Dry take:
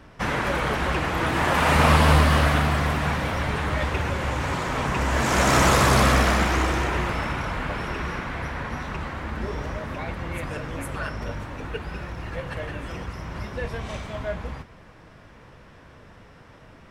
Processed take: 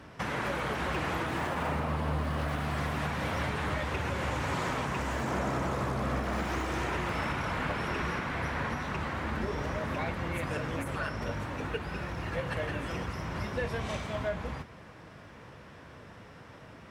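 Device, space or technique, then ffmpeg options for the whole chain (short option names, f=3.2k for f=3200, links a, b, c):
podcast mastering chain: -af "highpass=73,deesser=0.85,acompressor=threshold=-26dB:ratio=2.5,alimiter=limit=-21.5dB:level=0:latency=1:release=452" -ar 48000 -c:a libmp3lame -b:a 112k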